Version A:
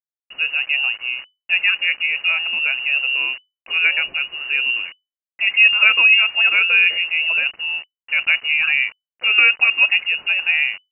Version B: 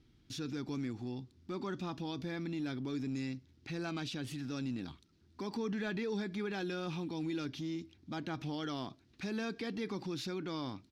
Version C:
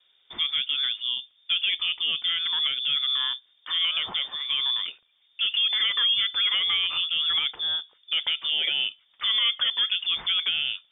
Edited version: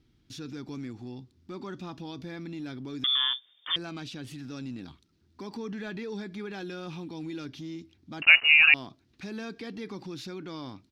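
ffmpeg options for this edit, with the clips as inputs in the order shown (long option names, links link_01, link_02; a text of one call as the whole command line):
ffmpeg -i take0.wav -i take1.wav -i take2.wav -filter_complex "[1:a]asplit=3[link_01][link_02][link_03];[link_01]atrim=end=3.042[link_04];[2:a]atrim=start=3.038:end=3.762[link_05];[link_02]atrim=start=3.758:end=8.222[link_06];[0:a]atrim=start=8.218:end=8.742[link_07];[link_03]atrim=start=8.738[link_08];[link_04][link_05]acrossfade=duration=0.004:curve1=hsin:curve2=hsin[link_09];[link_09][link_06]acrossfade=duration=0.004:curve1=hsin:curve2=hsin[link_10];[link_10][link_07]acrossfade=duration=0.004:curve1=hsin:curve2=hsin[link_11];[link_11][link_08]acrossfade=duration=0.004:curve1=hsin:curve2=hsin" out.wav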